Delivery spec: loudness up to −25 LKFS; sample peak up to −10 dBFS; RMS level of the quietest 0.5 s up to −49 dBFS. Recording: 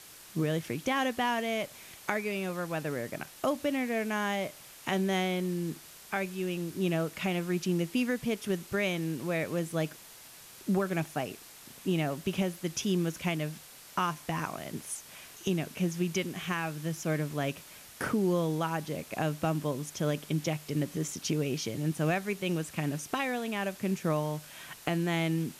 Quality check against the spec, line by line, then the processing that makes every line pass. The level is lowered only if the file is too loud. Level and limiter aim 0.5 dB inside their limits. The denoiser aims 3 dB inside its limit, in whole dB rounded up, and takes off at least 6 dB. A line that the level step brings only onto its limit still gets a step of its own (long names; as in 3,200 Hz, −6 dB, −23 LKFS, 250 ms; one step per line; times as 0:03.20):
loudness −32.5 LKFS: in spec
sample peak −11.5 dBFS: in spec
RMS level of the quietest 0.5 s −51 dBFS: in spec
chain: no processing needed